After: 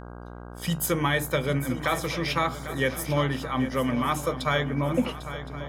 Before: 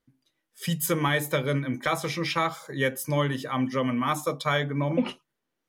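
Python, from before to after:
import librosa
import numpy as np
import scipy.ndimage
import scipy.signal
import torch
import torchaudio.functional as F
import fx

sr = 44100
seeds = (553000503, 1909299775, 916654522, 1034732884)

y = fx.dmg_buzz(x, sr, base_hz=60.0, harmonics=27, level_db=-41.0, tilt_db=-4, odd_only=False)
y = fx.echo_swing(y, sr, ms=1065, ratio=3, feedback_pct=33, wet_db=-12.5)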